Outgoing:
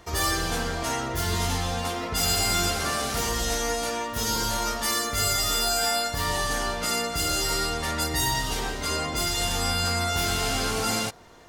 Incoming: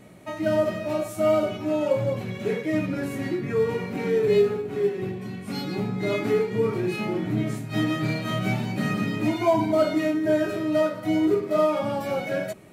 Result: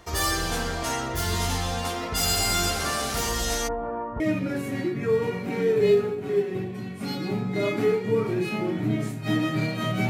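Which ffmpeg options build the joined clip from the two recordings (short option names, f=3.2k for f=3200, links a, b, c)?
-filter_complex "[0:a]asplit=3[a][b][c];[a]afade=t=out:st=3.67:d=0.02[d];[b]lowpass=f=1.2k:w=0.5412,lowpass=f=1.2k:w=1.3066,afade=t=in:st=3.67:d=0.02,afade=t=out:st=4.2:d=0.02[e];[c]afade=t=in:st=4.2:d=0.02[f];[d][e][f]amix=inputs=3:normalize=0,apad=whole_dur=10.09,atrim=end=10.09,atrim=end=4.202[g];[1:a]atrim=start=2.668:end=8.56[h];[g][h]acrossfade=d=0.004:c1=hsin:c2=hsin"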